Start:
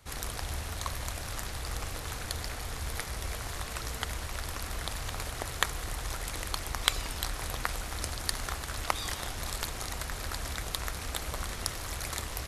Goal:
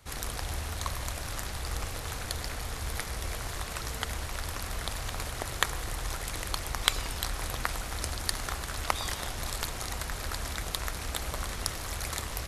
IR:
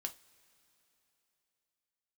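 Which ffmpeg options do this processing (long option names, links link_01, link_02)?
-filter_complex "[0:a]asplit=2[link_01][link_02];[1:a]atrim=start_sample=2205,lowpass=1200,adelay=106[link_03];[link_02][link_03]afir=irnorm=-1:irlink=0,volume=-8.5dB[link_04];[link_01][link_04]amix=inputs=2:normalize=0,volume=1dB"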